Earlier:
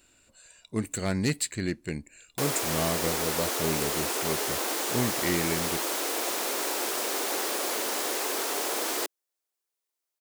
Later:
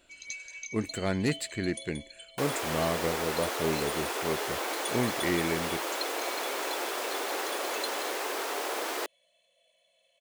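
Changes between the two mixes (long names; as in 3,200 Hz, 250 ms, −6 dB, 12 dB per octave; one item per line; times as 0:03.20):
speech: add low-shelf EQ 240 Hz +11.5 dB
first sound: unmuted
master: add bass and treble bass −13 dB, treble −9 dB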